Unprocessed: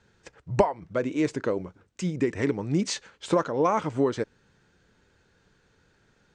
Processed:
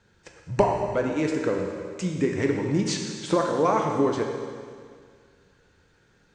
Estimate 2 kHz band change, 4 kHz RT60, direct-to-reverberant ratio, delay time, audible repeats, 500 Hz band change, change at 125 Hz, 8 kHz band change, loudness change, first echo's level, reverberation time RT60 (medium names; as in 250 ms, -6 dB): +2.5 dB, 2.0 s, 1.5 dB, no echo, no echo, +2.5 dB, +1.5 dB, +2.5 dB, +2.0 dB, no echo, 2.0 s